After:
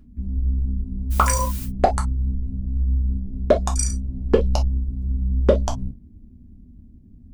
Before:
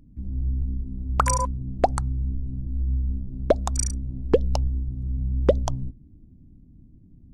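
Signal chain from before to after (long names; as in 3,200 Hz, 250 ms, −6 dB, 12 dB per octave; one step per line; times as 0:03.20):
0:01.10–0:01.64: background noise blue −40 dBFS
reverb whose tail is shaped and stops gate 80 ms falling, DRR 0 dB
level +1 dB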